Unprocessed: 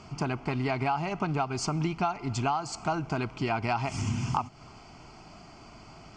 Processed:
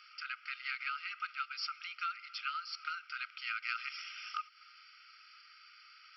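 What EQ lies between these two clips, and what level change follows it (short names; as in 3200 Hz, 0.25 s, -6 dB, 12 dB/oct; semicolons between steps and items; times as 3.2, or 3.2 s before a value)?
brick-wall FIR band-pass 1200–5700 Hz; -1.5 dB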